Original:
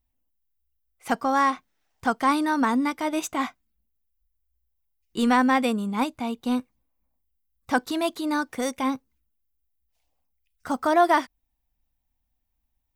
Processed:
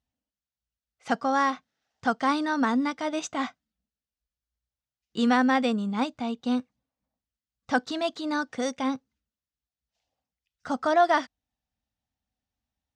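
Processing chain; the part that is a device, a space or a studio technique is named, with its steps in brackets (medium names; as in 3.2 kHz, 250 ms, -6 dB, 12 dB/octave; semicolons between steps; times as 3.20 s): car door speaker (cabinet simulation 100–6600 Hz, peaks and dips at 350 Hz -8 dB, 1 kHz -6 dB, 2.3 kHz -5 dB)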